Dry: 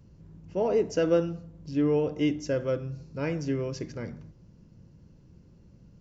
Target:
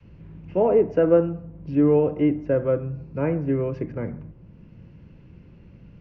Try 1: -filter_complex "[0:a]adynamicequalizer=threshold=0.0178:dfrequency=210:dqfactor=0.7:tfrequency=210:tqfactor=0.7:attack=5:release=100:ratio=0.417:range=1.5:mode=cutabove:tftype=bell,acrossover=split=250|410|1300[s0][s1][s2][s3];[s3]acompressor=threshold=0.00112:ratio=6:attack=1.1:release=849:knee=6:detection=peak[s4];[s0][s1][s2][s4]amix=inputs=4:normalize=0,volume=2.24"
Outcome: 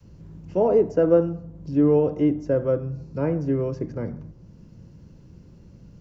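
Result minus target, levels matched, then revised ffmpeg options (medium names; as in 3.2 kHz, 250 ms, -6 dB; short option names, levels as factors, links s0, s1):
2 kHz band -3.5 dB
-filter_complex "[0:a]adynamicequalizer=threshold=0.0178:dfrequency=210:dqfactor=0.7:tfrequency=210:tqfactor=0.7:attack=5:release=100:ratio=0.417:range=1.5:mode=cutabove:tftype=bell,lowpass=f=2500:t=q:w=2.7,acrossover=split=250|410|1300[s0][s1][s2][s3];[s3]acompressor=threshold=0.00112:ratio=6:attack=1.1:release=849:knee=6:detection=peak[s4];[s0][s1][s2][s4]amix=inputs=4:normalize=0,volume=2.24"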